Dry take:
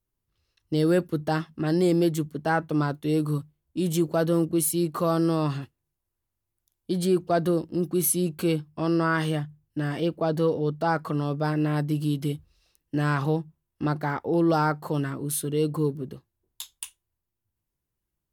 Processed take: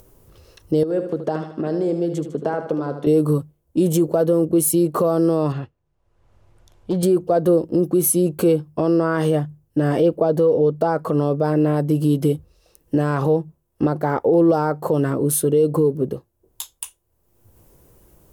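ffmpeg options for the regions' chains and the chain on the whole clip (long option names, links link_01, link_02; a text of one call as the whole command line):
ffmpeg -i in.wav -filter_complex "[0:a]asettb=1/sr,asplit=3[link_01][link_02][link_03];[link_01]atrim=end=0.834[link_04];[link_02]atrim=start=0.83:end=3.07,asetpts=PTS-STARTPTS,afade=type=in:duration=0.004:curve=qsin,afade=type=out:start_time=2.236:duration=0.004:curve=qsin,acompressor=threshold=-31dB:ratio=8:attack=3.2:release=140:knee=1:detection=peak,highpass=140,lowpass=5900,aecho=1:1:76|152|228|304|380|456:0.355|0.174|0.0852|0.0417|0.0205|0.01,atrim=end_sample=98784[link_05];[link_03]atrim=start=3.066[link_06];[link_04][link_05]acrossfade=duration=0.004:curve1=hsin:curve2=qsin[link_07];[link_07][link_06]acrossfade=duration=0.004:curve1=qsin:curve2=hsin,asettb=1/sr,asplit=3[link_08][link_09][link_10];[link_08]atrim=end=5.524[link_11];[link_09]atrim=start=5.52:end=7.03,asetpts=PTS-STARTPTS,afade=type=in:duration=0.004:curve=qsin,afade=type=out:start_time=1.506:duration=0.004:curve=qsin,lowpass=3300,equalizer=frequency=340:width=0.73:gain=-7.5,asoftclip=type=hard:threshold=-27dB[link_12];[link_10]atrim=start=7.026[link_13];[link_11][link_12]acrossfade=duration=0.004:curve1=hsin:curve2=qsin[link_14];[link_14][link_13]acrossfade=duration=0.004:curve1=qsin:curve2=hsin,equalizer=frequency=500:width_type=o:width=1:gain=10,equalizer=frequency=2000:width_type=o:width=1:gain=-5,equalizer=frequency=4000:width_type=o:width=1:gain=-6,alimiter=limit=-17.5dB:level=0:latency=1:release=155,acompressor=mode=upward:threshold=-42dB:ratio=2.5,volume=8.5dB" out.wav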